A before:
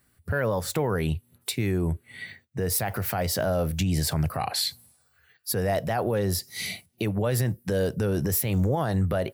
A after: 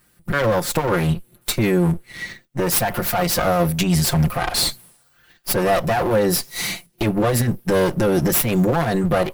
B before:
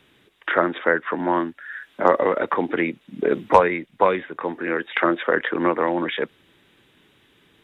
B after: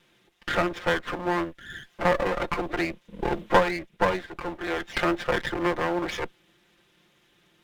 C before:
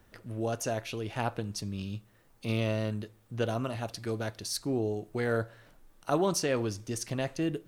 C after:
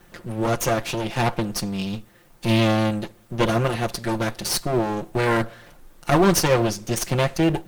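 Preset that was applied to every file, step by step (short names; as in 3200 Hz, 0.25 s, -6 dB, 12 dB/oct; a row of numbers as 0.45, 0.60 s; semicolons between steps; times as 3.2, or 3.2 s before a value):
minimum comb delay 5.7 ms; short-mantissa float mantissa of 6-bit; normalise peaks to -6 dBFS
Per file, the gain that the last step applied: +9.0, -3.5, +12.0 dB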